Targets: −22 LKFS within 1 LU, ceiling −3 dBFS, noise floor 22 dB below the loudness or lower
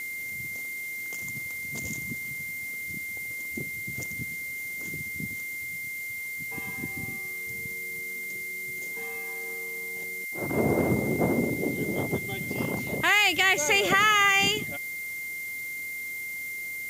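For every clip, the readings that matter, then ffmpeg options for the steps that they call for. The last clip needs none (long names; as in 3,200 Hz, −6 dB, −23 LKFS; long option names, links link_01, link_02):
interfering tone 2,100 Hz; level of the tone −33 dBFS; background noise floor −36 dBFS; target noise floor −50 dBFS; integrated loudness −28.0 LKFS; sample peak −9.5 dBFS; target loudness −22.0 LKFS
→ -af "bandreject=frequency=2100:width=30"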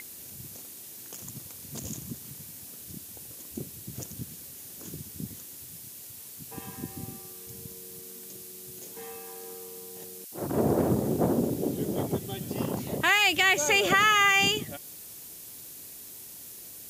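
interfering tone none found; background noise floor −45 dBFS; target noise floor −48 dBFS
→ -af "afftdn=noise_reduction=6:noise_floor=-45"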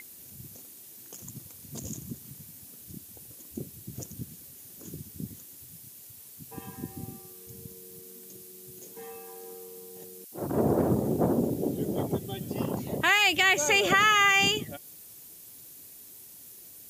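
background noise floor −49 dBFS; integrated loudness −24.5 LKFS; sample peak −9.5 dBFS; target loudness −22.0 LKFS
→ -af "volume=2.5dB"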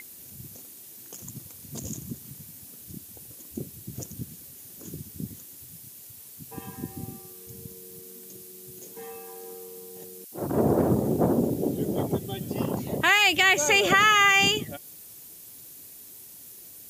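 integrated loudness −22.0 LKFS; sample peak −7.0 dBFS; background noise floor −46 dBFS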